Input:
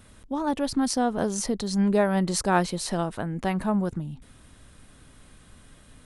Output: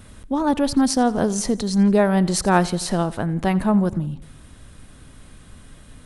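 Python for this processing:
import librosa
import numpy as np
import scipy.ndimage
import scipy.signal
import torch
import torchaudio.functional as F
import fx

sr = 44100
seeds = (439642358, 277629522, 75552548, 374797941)

p1 = fx.low_shelf(x, sr, hz=260.0, db=4.0)
p2 = fx.rider(p1, sr, range_db=5, speed_s=2.0)
p3 = p1 + (p2 * 10.0 ** (-2.0 / 20.0))
p4 = fx.echo_feedback(p3, sr, ms=86, feedback_pct=55, wet_db=-20.0)
y = p4 * 10.0 ** (-1.0 / 20.0)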